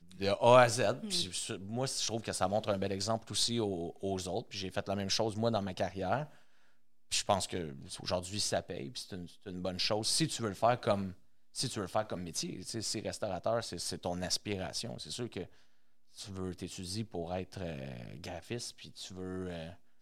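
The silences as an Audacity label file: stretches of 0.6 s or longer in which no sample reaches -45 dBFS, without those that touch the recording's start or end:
6.270000	7.110000	silence
15.460000	16.180000	silence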